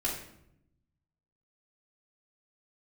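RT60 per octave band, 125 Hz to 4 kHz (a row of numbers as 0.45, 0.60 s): 1.5, 1.2, 0.85, 0.70, 0.65, 0.55 s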